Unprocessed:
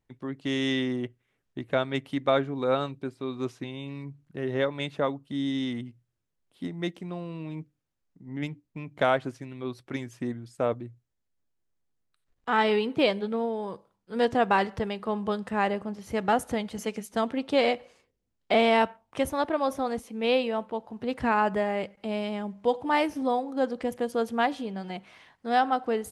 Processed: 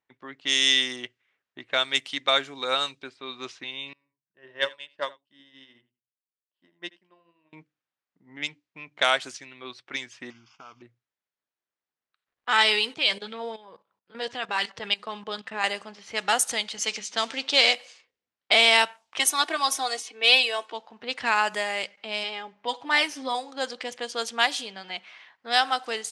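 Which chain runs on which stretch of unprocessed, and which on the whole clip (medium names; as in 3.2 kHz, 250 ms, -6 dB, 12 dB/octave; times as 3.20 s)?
3.93–7.53 s: rippled EQ curve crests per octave 1.3, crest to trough 8 dB + delay 82 ms -9.5 dB + upward expansion 2.5:1, over -38 dBFS
10.30–10.82 s: CVSD coder 32 kbps + compression 8:1, threshold -32 dBFS + static phaser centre 2.7 kHz, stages 8
12.93–15.64 s: tone controls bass +6 dB, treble -1 dB + level held to a coarse grid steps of 15 dB + sweeping bell 3.8 Hz 430–3400 Hz +7 dB
16.86–17.74 s: companding laws mixed up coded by mu + Chebyshev band-pass 110–6300 Hz
19.19–20.73 s: high-pass 250 Hz 24 dB/octave + comb 2.7 ms, depth 77%
22.23–23.35 s: treble shelf 5.4 kHz -11.5 dB + comb 7.3 ms, depth 50%
whole clip: frequency weighting ITU-R 468; level-controlled noise filter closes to 1.4 kHz, open at -24.5 dBFS; treble shelf 3.1 kHz +9 dB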